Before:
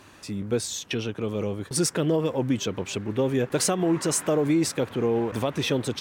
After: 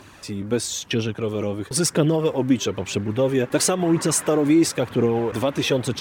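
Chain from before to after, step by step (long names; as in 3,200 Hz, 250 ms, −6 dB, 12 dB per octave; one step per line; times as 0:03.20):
phase shifter 1 Hz, delay 3.8 ms, feedback 35%
level +3.5 dB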